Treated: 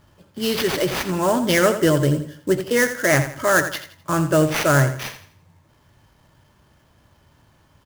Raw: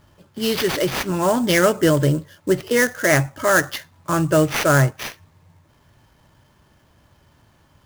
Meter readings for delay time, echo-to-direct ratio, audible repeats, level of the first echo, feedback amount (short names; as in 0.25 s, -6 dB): 84 ms, -10.5 dB, 3, -11.0 dB, 34%